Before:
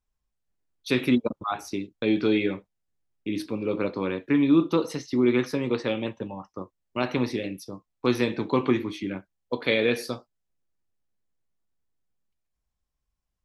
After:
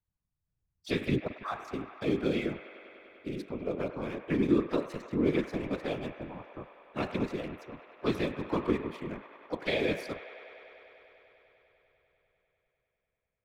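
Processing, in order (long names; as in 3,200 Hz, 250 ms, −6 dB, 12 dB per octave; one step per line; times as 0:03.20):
adaptive Wiener filter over 9 samples
pitch-shifted copies added +5 semitones −14 dB
random phases in short frames
on a send: delay with a band-pass on its return 99 ms, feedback 85%, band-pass 1,300 Hz, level −11 dB
on the sum: level −7 dB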